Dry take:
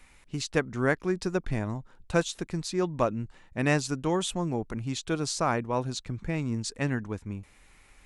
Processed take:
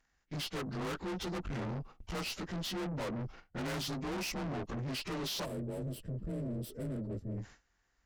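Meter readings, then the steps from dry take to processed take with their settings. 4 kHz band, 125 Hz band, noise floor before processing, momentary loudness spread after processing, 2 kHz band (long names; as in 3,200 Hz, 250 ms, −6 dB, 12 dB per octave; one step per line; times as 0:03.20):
−3.5 dB, −7.5 dB, −58 dBFS, 5 LU, −10.5 dB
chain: partials spread apart or drawn together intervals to 89%
noise gate with hold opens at −47 dBFS
tube saturation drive 43 dB, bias 0.55
gain on a spectral selection 0:05.45–0:07.38, 670–7,400 Hz −16 dB
level +7 dB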